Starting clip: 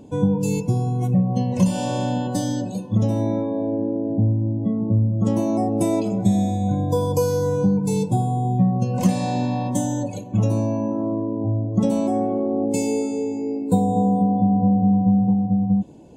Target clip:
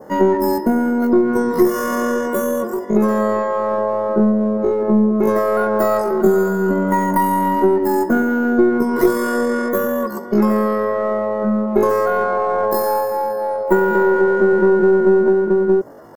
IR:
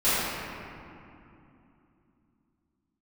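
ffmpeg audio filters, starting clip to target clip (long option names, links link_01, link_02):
-filter_complex "[0:a]asplit=2[link_01][link_02];[link_02]aeval=exprs='clip(val(0),-1,0.0501)':channel_layout=same,volume=-4.5dB[link_03];[link_01][link_03]amix=inputs=2:normalize=0,asetrate=85689,aresample=44100,atempo=0.514651,adynamicequalizer=threshold=0.00891:dfrequency=2900:dqfactor=1:tfrequency=2900:tqfactor=1:attack=5:release=100:ratio=0.375:range=3.5:mode=cutabove:tftype=bell,volume=1.5dB"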